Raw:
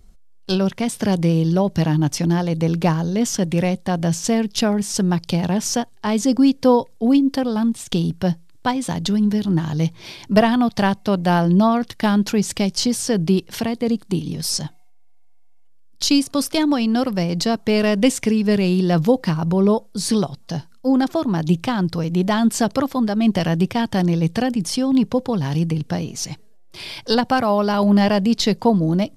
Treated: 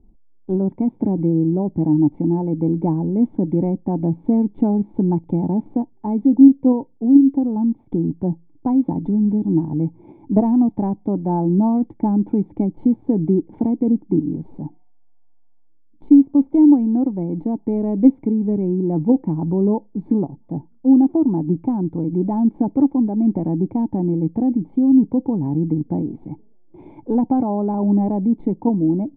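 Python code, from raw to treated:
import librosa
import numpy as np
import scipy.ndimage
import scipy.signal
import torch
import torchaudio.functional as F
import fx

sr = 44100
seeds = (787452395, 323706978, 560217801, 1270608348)

p1 = fx.level_steps(x, sr, step_db=12)
p2 = x + F.gain(torch.from_numpy(p1), -2.0).numpy()
p3 = fx.formant_cascade(p2, sr, vowel='u')
p4 = fx.rider(p3, sr, range_db=4, speed_s=2.0)
y = F.gain(torch.from_numpy(p4), 5.0).numpy()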